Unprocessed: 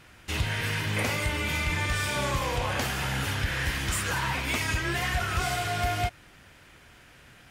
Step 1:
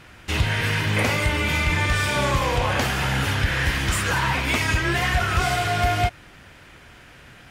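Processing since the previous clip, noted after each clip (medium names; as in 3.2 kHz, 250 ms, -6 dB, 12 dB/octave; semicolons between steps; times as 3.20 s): treble shelf 5.8 kHz -6 dB; trim +7 dB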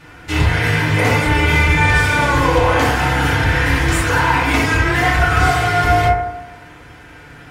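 FDN reverb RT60 0.98 s, low-frequency decay 0.75×, high-frequency decay 0.25×, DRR -7.5 dB; trim -1 dB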